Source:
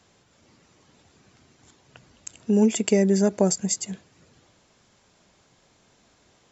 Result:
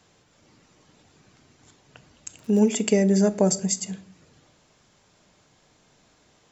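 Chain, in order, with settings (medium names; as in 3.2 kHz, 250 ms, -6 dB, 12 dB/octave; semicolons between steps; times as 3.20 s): 2.38–3.18 s: crackle 67 per s -> 13 per s -33 dBFS; reverberation, pre-delay 7 ms, DRR 12.5 dB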